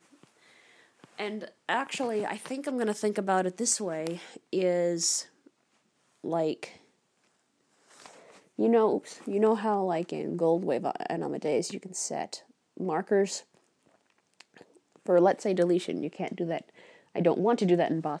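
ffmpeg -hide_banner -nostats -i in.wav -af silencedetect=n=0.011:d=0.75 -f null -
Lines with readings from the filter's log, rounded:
silence_start: 0.00
silence_end: 1.04 | silence_duration: 1.04
silence_start: 5.22
silence_end: 6.24 | silence_duration: 1.02
silence_start: 6.69
silence_end: 8.00 | silence_duration: 1.31
silence_start: 13.40
silence_end: 14.40 | silence_duration: 1.00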